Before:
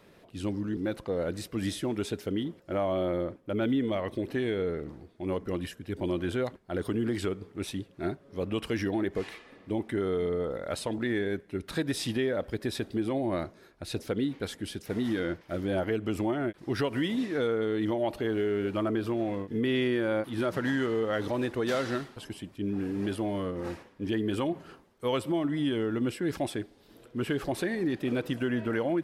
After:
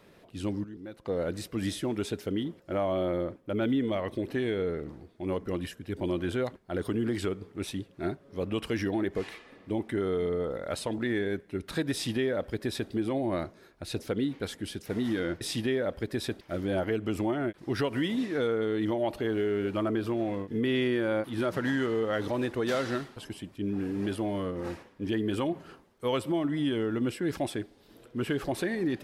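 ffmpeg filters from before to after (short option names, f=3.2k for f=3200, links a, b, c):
-filter_complex "[0:a]asplit=5[a][b][c][d][e];[a]atrim=end=0.642[f];[b]atrim=start=0.638:end=1.052,asetpts=PTS-STARTPTS,volume=-11.5dB[g];[c]atrim=start=1.048:end=15.412[h];[d]atrim=start=11.918:end=12.922[i];[e]atrim=start=15.408[j];[f][g]acrossfade=d=0.004:c1=hsin:c2=hsin[k];[k][h]acrossfade=d=0.004:c1=hsin:c2=hsin[l];[l][i]acrossfade=d=0.004:c1=hsin:c2=hsin[m];[m][j]acrossfade=d=0.004:c1=hsin:c2=hsin"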